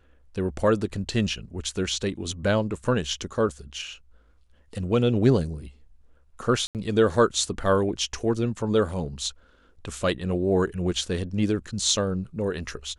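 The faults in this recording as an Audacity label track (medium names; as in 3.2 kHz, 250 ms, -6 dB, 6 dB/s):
6.670000	6.750000	dropout 78 ms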